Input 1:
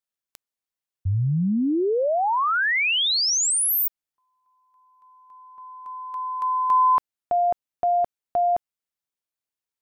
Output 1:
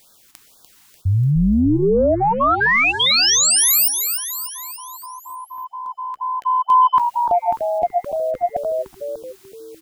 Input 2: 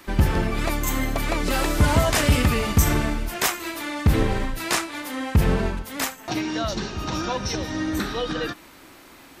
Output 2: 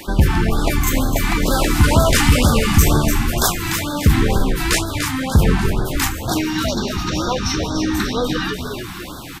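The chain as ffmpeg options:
-filter_complex "[0:a]areverse,acompressor=mode=upward:threshold=0.0316:ratio=2.5:attack=0.13:release=25:knee=2.83:detection=peak,areverse,asplit=7[s0][s1][s2][s3][s4][s5][s6];[s1]adelay=295,afreqshift=-63,volume=0.447[s7];[s2]adelay=590,afreqshift=-126,volume=0.237[s8];[s3]adelay=885,afreqshift=-189,volume=0.126[s9];[s4]adelay=1180,afreqshift=-252,volume=0.0668[s10];[s5]adelay=1475,afreqshift=-315,volume=0.0351[s11];[s6]adelay=1770,afreqshift=-378,volume=0.0186[s12];[s0][s7][s8][s9][s10][s11][s12]amix=inputs=7:normalize=0,acontrast=56,afftfilt=real='re*(1-between(b*sr/1024,480*pow(2400/480,0.5+0.5*sin(2*PI*2.1*pts/sr))/1.41,480*pow(2400/480,0.5+0.5*sin(2*PI*2.1*pts/sr))*1.41))':imag='im*(1-between(b*sr/1024,480*pow(2400/480,0.5+0.5*sin(2*PI*2.1*pts/sr))/1.41,480*pow(2400/480,0.5+0.5*sin(2*PI*2.1*pts/sr))*1.41))':win_size=1024:overlap=0.75"

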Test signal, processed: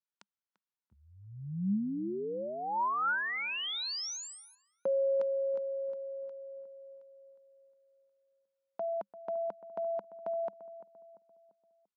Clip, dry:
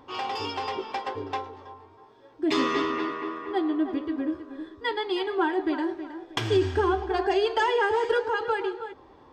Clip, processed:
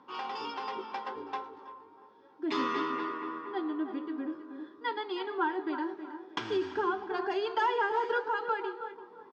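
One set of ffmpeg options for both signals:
-filter_complex "[0:a]highpass=f=160:w=0.5412,highpass=f=160:w=1.3066,equalizer=f=200:t=q:w=4:g=9,equalizer=f=670:t=q:w=4:g=-4,equalizer=f=960:t=q:w=4:g=7,equalizer=f=1400:t=q:w=4:g=7,lowpass=f=6100:w=0.5412,lowpass=f=6100:w=1.3066,asplit=2[s0][s1];[s1]adelay=343,lowpass=f=1200:p=1,volume=0.211,asplit=2[s2][s3];[s3]adelay=343,lowpass=f=1200:p=1,volume=0.5,asplit=2[s4][s5];[s5]adelay=343,lowpass=f=1200:p=1,volume=0.5,asplit=2[s6][s7];[s7]adelay=343,lowpass=f=1200:p=1,volume=0.5,asplit=2[s8][s9];[s9]adelay=343,lowpass=f=1200:p=1,volume=0.5[s10];[s2][s4][s6][s8][s10]amix=inputs=5:normalize=0[s11];[s0][s11]amix=inputs=2:normalize=0,volume=0.376"

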